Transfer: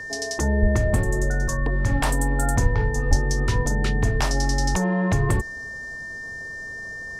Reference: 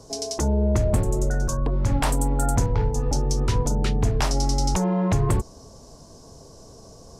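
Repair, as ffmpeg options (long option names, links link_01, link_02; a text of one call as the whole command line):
ffmpeg -i in.wav -filter_complex "[0:a]bandreject=frequency=1800:width=30,asplit=3[link_01][link_02][link_03];[link_01]afade=type=out:start_time=0.61:duration=0.02[link_04];[link_02]highpass=frequency=140:width=0.5412,highpass=frequency=140:width=1.3066,afade=type=in:start_time=0.61:duration=0.02,afade=type=out:start_time=0.73:duration=0.02[link_05];[link_03]afade=type=in:start_time=0.73:duration=0.02[link_06];[link_04][link_05][link_06]amix=inputs=3:normalize=0,asplit=3[link_07][link_08][link_09];[link_07]afade=type=out:start_time=2.62:duration=0.02[link_10];[link_08]highpass=frequency=140:width=0.5412,highpass=frequency=140:width=1.3066,afade=type=in:start_time=2.62:duration=0.02,afade=type=out:start_time=2.74:duration=0.02[link_11];[link_09]afade=type=in:start_time=2.74:duration=0.02[link_12];[link_10][link_11][link_12]amix=inputs=3:normalize=0,asplit=3[link_13][link_14][link_15];[link_13]afade=type=out:start_time=3.09:duration=0.02[link_16];[link_14]highpass=frequency=140:width=0.5412,highpass=frequency=140:width=1.3066,afade=type=in:start_time=3.09:duration=0.02,afade=type=out:start_time=3.21:duration=0.02[link_17];[link_15]afade=type=in:start_time=3.21:duration=0.02[link_18];[link_16][link_17][link_18]amix=inputs=3:normalize=0" out.wav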